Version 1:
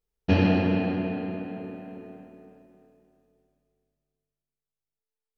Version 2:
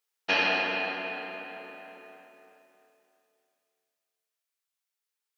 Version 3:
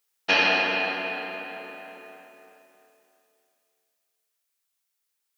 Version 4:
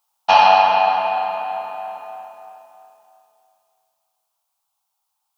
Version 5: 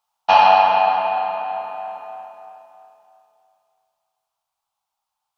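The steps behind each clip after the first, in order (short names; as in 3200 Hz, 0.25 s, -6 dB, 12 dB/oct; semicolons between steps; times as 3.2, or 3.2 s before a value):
HPF 1100 Hz 12 dB/oct; gain +8 dB
high shelf 6000 Hz +5.5 dB; gain +4 dB
EQ curve 130 Hz 0 dB, 400 Hz -21 dB, 800 Hz +15 dB, 1200 Hz +5 dB, 1800 Hz -12 dB, 3000 Hz -4 dB; gain +6.5 dB
LPF 3300 Hz 6 dB/oct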